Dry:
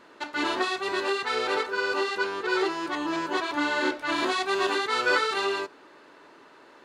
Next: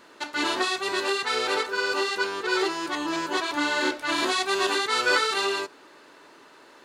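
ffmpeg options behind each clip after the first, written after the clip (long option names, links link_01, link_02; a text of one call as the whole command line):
ffmpeg -i in.wav -af "highshelf=frequency=4400:gain=10.5" out.wav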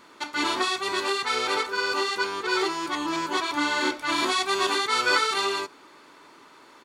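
ffmpeg -i in.wav -af "aecho=1:1:0.9:0.33" out.wav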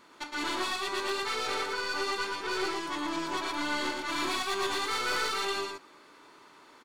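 ffmpeg -i in.wav -af "aeval=exprs='(tanh(14.1*val(0)+0.35)-tanh(0.35))/14.1':channel_layout=same,aecho=1:1:115:0.668,volume=-4.5dB" out.wav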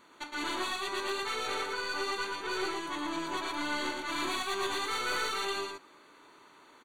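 ffmpeg -i in.wav -af "asuperstop=centerf=5200:order=12:qfactor=5.3,volume=-2dB" out.wav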